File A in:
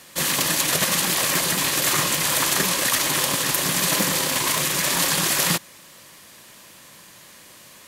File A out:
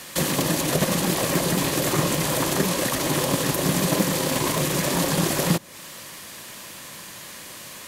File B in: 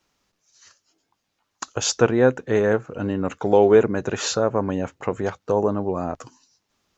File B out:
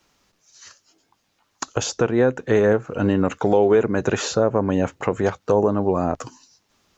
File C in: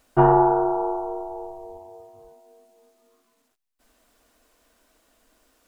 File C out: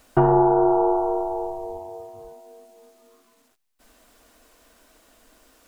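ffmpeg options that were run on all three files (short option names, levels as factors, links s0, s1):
-filter_complex "[0:a]acrossover=split=720[s0][s1];[s0]alimiter=limit=0.158:level=0:latency=1:release=395[s2];[s1]acompressor=threshold=0.0224:ratio=6[s3];[s2][s3]amix=inputs=2:normalize=0,volume=2.24"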